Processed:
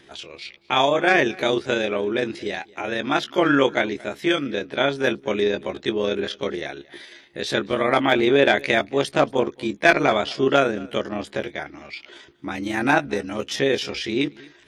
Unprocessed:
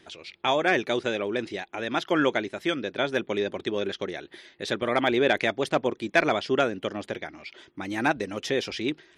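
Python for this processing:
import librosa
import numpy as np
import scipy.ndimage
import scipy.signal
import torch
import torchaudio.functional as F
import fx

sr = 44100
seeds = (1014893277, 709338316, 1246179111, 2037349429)

y = fx.stretch_grains(x, sr, factor=1.6, grain_ms=77.0)
y = y + 10.0 ** (-23.5 / 20.0) * np.pad(y, (int(227 * sr / 1000.0), 0))[:len(y)]
y = F.gain(torch.from_numpy(y), 6.0).numpy()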